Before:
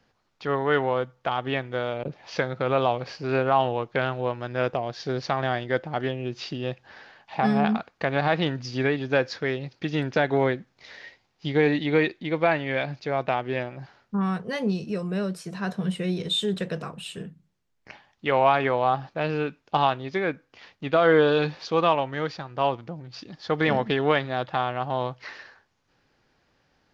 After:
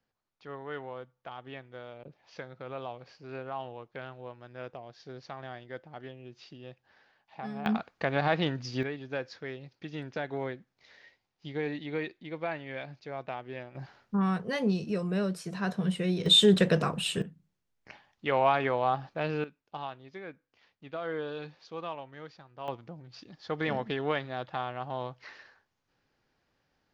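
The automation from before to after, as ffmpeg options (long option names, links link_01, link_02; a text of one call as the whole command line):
ffmpeg -i in.wav -af "asetnsamples=nb_out_samples=441:pad=0,asendcmd='7.66 volume volume -4dB;8.83 volume volume -12.5dB;13.75 volume volume -2dB;16.26 volume volume 6dB;17.22 volume volume -5dB;19.44 volume volume -17dB;22.68 volume volume -8.5dB',volume=-16.5dB" out.wav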